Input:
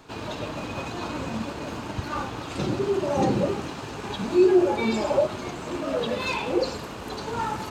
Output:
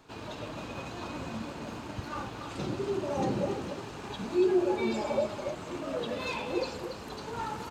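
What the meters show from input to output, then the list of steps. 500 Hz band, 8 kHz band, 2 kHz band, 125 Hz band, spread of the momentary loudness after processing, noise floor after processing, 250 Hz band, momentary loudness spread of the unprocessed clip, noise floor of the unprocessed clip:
-7.0 dB, -7.0 dB, -7.0 dB, -7.0 dB, 12 LU, -43 dBFS, -7.0 dB, 13 LU, -36 dBFS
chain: delay 282 ms -8 dB; trim -7.5 dB

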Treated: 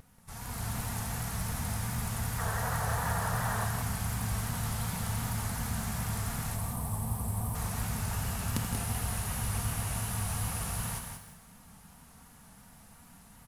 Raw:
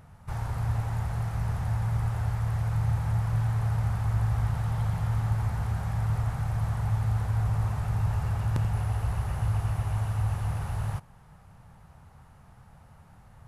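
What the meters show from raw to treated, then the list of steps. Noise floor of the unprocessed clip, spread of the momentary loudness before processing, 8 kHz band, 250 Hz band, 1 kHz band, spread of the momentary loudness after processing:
-54 dBFS, 4 LU, no reading, +1.0 dB, +1.0 dB, 4 LU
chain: time-frequency box 6.55–7.55 s, 1.2–7.7 kHz -13 dB; pre-emphasis filter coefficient 0.9; time-frequency box 2.39–3.64 s, 430–1900 Hz +9 dB; peaking EQ 230 Hz +10.5 dB 1.1 oct; comb 4.3 ms, depth 40%; level rider gain up to 8 dB; in parallel at -4.5 dB: short-mantissa float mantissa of 2-bit; on the sum: vibrato 2.7 Hz 86 cents; on a send: delay 184 ms -7 dB; on the sum: Schroeder reverb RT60 1.1 s, combs from 29 ms, DRR 10 dB; bit-crushed delay 162 ms, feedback 35%, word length 8-bit, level -10.5 dB

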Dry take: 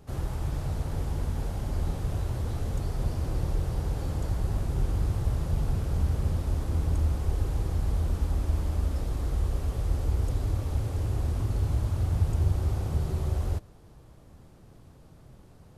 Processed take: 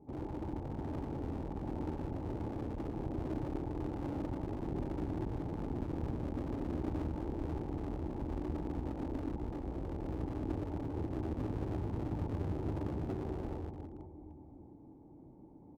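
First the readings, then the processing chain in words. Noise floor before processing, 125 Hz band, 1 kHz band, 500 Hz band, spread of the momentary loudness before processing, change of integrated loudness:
-53 dBFS, -12.5 dB, -3.5 dB, -1.5 dB, 5 LU, -9.5 dB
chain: cascade formant filter u; reverse bouncing-ball echo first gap 120 ms, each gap 1.3×, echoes 5; one-sided clip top -45.5 dBFS; tilt EQ +2.5 dB/octave; trim +11.5 dB

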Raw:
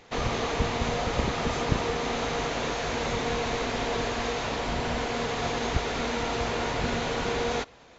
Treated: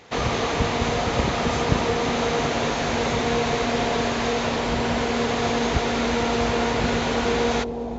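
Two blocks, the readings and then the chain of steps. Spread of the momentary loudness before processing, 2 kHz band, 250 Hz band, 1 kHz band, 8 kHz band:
2 LU, +5.0 dB, +8.0 dB, +5.5 dB, no reading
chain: high-pass 50 Hz; on a send: bucket-brigade echo 365 ms, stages 2048, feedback 83%, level -11 dB; on the sum: trim +5 dB

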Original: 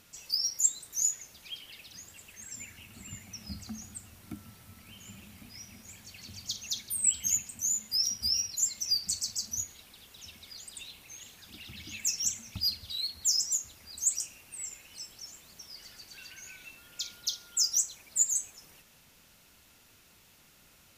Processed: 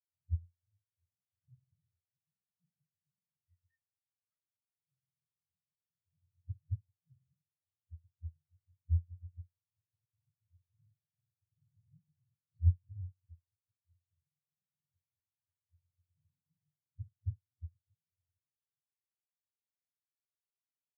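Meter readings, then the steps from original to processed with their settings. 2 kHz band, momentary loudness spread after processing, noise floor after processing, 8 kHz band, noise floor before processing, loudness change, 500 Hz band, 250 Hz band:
under -35 dB, 21 LU, under -85 dBFS, under -40 dB, -61 dBFS, -10.0 dB, no reading, under -20 dB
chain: spectrum inverted on a logarithmic axis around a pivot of 630 Hz; spectral contrast expander 2.5:1; trim -2 dB

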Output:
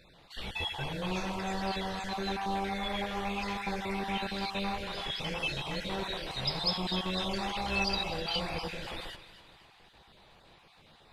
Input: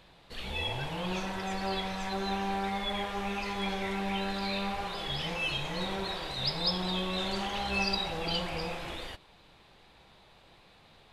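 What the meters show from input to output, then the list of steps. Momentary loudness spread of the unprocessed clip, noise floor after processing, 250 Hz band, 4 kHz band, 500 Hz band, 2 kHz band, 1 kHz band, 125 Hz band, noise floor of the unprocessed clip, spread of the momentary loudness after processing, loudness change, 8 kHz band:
7 LU, -60 dBFS, -1.0 dB, -1.0 dB, -1.0 dB, -0.5 dB, -0.5 dB, -1.0 dB, -59 dBFS, 8 LU, -1.0 dB, -0.5 dB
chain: random holes in the spectrogram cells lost 20%; two-band feedback delay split 850 Hz, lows 119 ms, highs 252 ms, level -13.5 dB

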